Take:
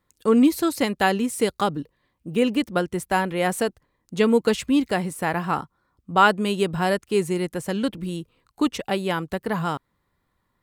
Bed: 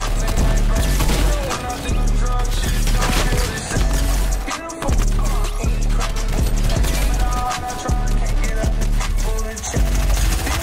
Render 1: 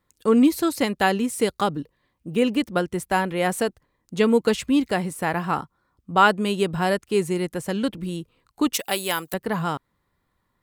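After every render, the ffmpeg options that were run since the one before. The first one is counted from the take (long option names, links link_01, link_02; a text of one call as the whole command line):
ffmpeg -i in.wav -filter_complex "[0:a]asettb=1/sr,asplit=3[link_01][link_02][link_03];[link_01]atrim=end=8.734[link_04];[link_02]atrim=start=8.73:end=9.34,asetpts=PTS-STARTPTS,afade=type=in:duration=0.004:curve=qsin,afade=type=out:start_time=0.606:duration=0.004:curve=qsin,aemphasis=mode=production:type=riaa[link_05];[link_03]atrim=start=9.336[link_06];[link_04][link_05]acrossfade=duration=0.004:curve1=hsin:curve2=qsin[link_07];[link_07][link_06]acrossfade=duration=0.004:curve1=qsin:curve2=hsin" out.wav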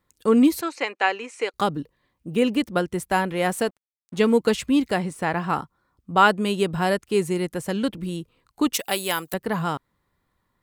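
ffmpeg -i in.wav -filter_complex "[0:a]asettb=1/sr,asplit=3[link_01][link_02][link_03];[link_01]atrim=end=0.614[link_04];[link_02]atrim=start=0.61:end=1.54,asetpts=PTS-STARTPTS,afade=type=in:duration=0.004:curve=qsin,afade=type=out:start_time=0.926:duration=0.004:curve=qsin,highpass=frequency=400:width=0.5412,highpass=frequency=400:width=1.3066,equalizer=frequency=400:width_type=q:width=4:gain=-3,equalizer=frequency=610:width_type=q:width=4:gain=-5,equalizer=frequency=2400:width_type=q:width=4:gain=7,equalizer=frequency=3500:width_type=q:width=4:gain=-8,equalizer=frequency=5000:width_type=q:width=4:gain=-8,lowpass=frequency=6200:width=0.5412,lowpass=frequency=6200:width=1.3066[link_05];[link_03]atrim=start=1.536[link_06];[link_04][link_05]acrossfade=duration=0.004:curve1=hsin:curve2=qsin[link_07];[link_07][link_06]acrossfade=duration=0.004:curve1=qsin:curve2=hsin,asettb=1/sr,asplit=3[link_08][link_09][link_10];[link_08]atrim=end=3.334[link_11];[link_09]atrim=start=3.33:end=4.37,asetpts=PTS-STARTPTS,afade=type=in:duration=0.004:curve=qsin,afade=type=out:start_time=1.036:duration=0.004:curve=qsin,aeval=exprs='sgn(val(0))*max(abs(val(0))-0.00447,0)':channel_layout=same[link_12];[link_10]atrim=start=4.366[link_13];[link_11][link_12]acrossfade=duration=0.004:curve1=hsin:curve2=qsin[link_14];[link_14][link_13]acrossfade=duration=0.004:curve1=qsin:curve2=hsin,asettb=1/sr,asplit=3[link_15][link_16][link_17];[link_15]atrim=end=4.984[link_18];[link_16]atrim=start=4.98:end=5.5,asetpts=PTS-STARTPTS,afade=type=in:duration=0.004:curve=qsin,afade=type=out:start_time=0.516:duration=0.004:curve=qsin,equalizer=frequency=13000:width=1.2:gain=-14[link_19];[link_17]atrim=start=5.496[link_20];[link_18][link_19]acrossfade=duration=0.004:curve1=hsin:curve2=qsin[link_21];[link_21][link_20]acrossfade=duration=0.004:curve1=qsin:curve2=hsin" out.wav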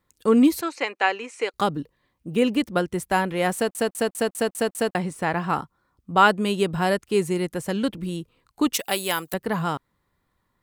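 ffmpeg -i in.wav -filter_complex "[0:a]asplit=8[link_01][link_02][link_03][link_04][link_05][link_06][link_07][link_08];[link_01]atrim=end=3.752[link_09];[link_02]atrim=start=3.548:end=3.752[link_10];[link_03]atrim=start=3.548:end=3.752[link_11];[link_04]atrim=start=3.548:end=3.752[link_12];[link_05]atrim=start=3.548:end=3.752[link_13];[link_06]atrim=start=3.548:end=3.752[link_14];[link_07]atrim=start=3.548:end=3.752[link_15];[link_08]atrim=start=4.948[link_16];[link_09][link_10]acrossfade=duration=0.004:curve1=hsin:curve2=hsin[link_17];[link_17][link_11]acrossfade=duration=0.004:curve1=hsin:curve2=hsin[link_18];[link_18][link_12]acrossfade=duration=0.004:curve1=hsin:curve2=hsin[link_19];[link_19][link_13]acrossfade=duration=0.004:curve1=hsin:curve2=hsin[link_20];[link_20][link_14]acrossfade=duration=0.004:curve1=hsin:curve2=hsin[link_21];[link_21][link_15]acrossfade=duration=0.004:curve1=hsin:curve2=hsin[link_22];[link_22][link_16]acrossfade=duration=0.004:curve1=hsin:curve2=hsin" out.wav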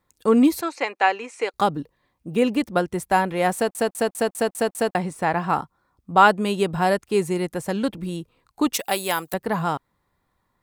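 ffmpeg -i in.wav -af "equalizer=frequency=780:width_type=o:width=0.83:gain=4.5,bandreject=frequency=3000:width=23" out.wav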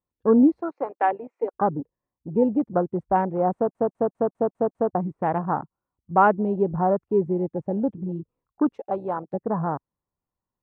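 ffmpeg -i in.wav -af "afwtdn=0.0562,lowpass=1000" out.wav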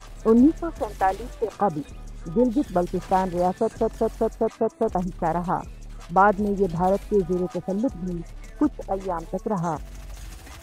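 ffmpeg -i in.wav -i bed.wav -filter_complex "[1:a]volume=-21.5dB[link_01];[0:a][link_01]amix=inputs=2:normalize=0" out.wav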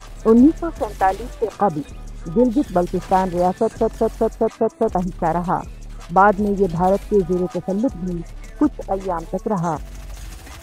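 ffmpeg -i in.wav -af "volume=4.5dB,alimiter=limit=-2dB:level=0:latency=1" out.wav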